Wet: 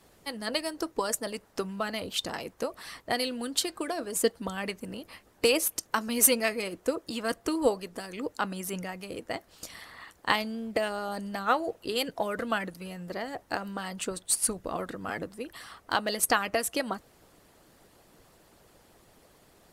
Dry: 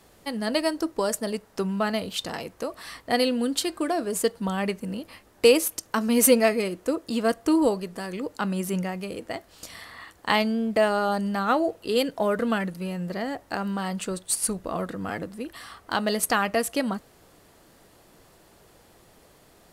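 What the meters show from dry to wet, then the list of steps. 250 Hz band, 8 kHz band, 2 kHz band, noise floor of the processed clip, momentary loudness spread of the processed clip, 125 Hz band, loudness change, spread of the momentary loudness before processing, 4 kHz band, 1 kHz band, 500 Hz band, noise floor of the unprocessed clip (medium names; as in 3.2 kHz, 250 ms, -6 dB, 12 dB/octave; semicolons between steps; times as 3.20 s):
-8.5 dB, -0.5 dB, -2.5 dB, -62 dBFS, 14 LU, -9.0 dB, -4.5 dB, 14 LU, -2.0 dB, -4.0 dB, -6.5 dB, -57 dBFS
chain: harmonic-percussive split harmonic -10 dB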